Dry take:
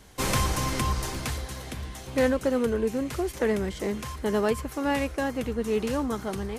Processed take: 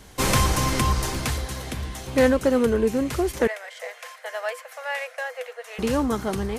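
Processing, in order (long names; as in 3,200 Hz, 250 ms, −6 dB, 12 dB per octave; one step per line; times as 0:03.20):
0:03.47–0:05.79: Chebyshev high-pass with heavy ripple 480 Hz, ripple 9 dB
level +5 dB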